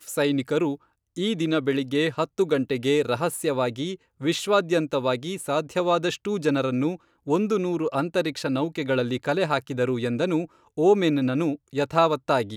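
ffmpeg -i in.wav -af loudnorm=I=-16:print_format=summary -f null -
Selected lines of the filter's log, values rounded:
Input Integrated:    -24.5 LUFS
Input True Peak:      -7.1 dBTP
Input LRA:             1.9 LU
Input Threshold:     -34.6 LUFS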